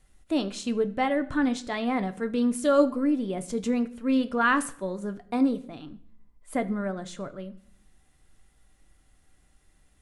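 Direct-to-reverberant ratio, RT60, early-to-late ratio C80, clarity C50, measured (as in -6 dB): 9.0 dB, 0.60 s, 20.0 dB, 17.0 dB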